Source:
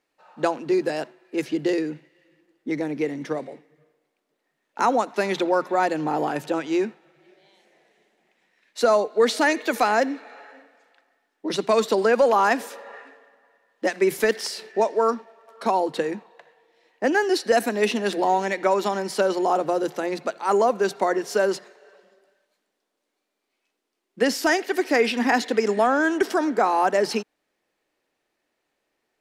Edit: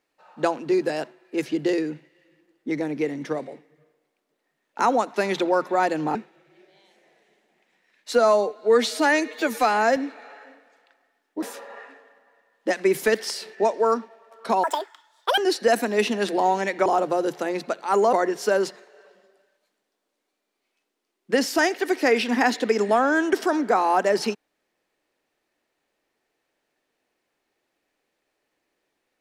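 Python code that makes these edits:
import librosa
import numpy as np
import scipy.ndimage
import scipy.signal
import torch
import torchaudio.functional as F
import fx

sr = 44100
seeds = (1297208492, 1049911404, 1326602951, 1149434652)

y = fx.edit(x, sr, fx.cut(start_s=6.15, length_s=0.69),
    fx.stretch_span(start_s=8.81, length_s=1.23, factor=1.5),
    fx.cut(start_s=11.5, length_s=1.09),
    fx.speed_span(start_s=15.8, length_s=1.42, speed=1.91),
    fx.cut(start_s=18.7, length_s=0.73),
    fx.cut(start_s=20.7, length_s=0.31), tone=tone)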